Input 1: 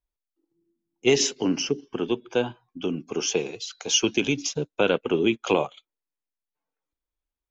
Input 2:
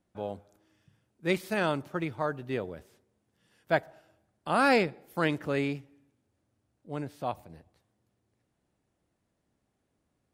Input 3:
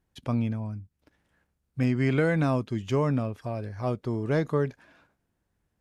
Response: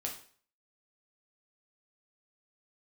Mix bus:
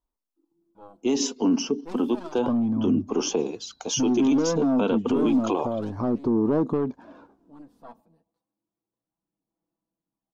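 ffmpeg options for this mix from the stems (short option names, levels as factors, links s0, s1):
-filter_complex "[0:a]alimiter=limit=0.237:level=0:latency=1:release=306,volume=0.75[s0];[1:a]aecho=1:1:6.1:0.79,aeval=exprs='0.501*(cos(1*acos(clip(val(0)/0.501,-1,1)))-cos(1*PI/2))+0.1*(cos(8*acos(clip(val(0)/0.501,-1,1)))-cos(8*PI/2))':c=same,adelay=600,volume=0.112[s1];[2:a]lowpass=6000,equalizer=f=340:t=o:w=2.4:g=10,asoftclip=type=tanh:threshold=0.141,adelay=2200,volume=1.12[s2];[s1][s2]amix=inputs=2:normalize=0,acompressor=threshold=0.0355:ratio=5,volume=1[s3];[s0][s3]amix=inputs=2:normalize=0,equalizer=f=125:t=o:w=1:g=-5,equalizer=f=250:t=o:w=1:g=11,equalizer=f=1000:t=o:w=1:g=10,equalizer=f=2000:t=o:w=1:g=-10,aphaser=in_gain=1:out_gain=1:delay=4.5:decay=0.35:speed=0.31:type=sinusoidal,alimiter=limit=0.188:level=0:latency=1:release=14"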